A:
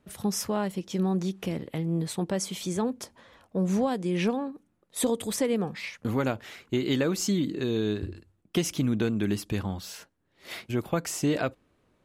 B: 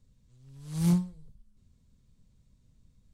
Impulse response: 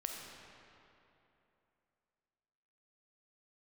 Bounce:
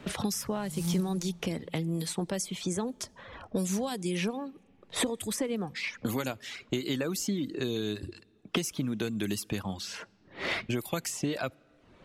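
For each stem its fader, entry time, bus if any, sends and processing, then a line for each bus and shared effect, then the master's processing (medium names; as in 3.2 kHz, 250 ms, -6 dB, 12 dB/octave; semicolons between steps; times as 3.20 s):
-5.0 dB, 0.00 s, send -24 dB, reverb removal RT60 0.51 s; level-controlled noise filter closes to 2.7 kHz, open at -25.5 dBFS; three bands compressed up and down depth 100%
0.0 dB, 0.00 s, send -13 dB, auto duck -18 dB, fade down 1.35 s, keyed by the first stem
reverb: on, RT60 3.0 s, pre-delay 5 ms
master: treble shelf 5 kHz +11 dB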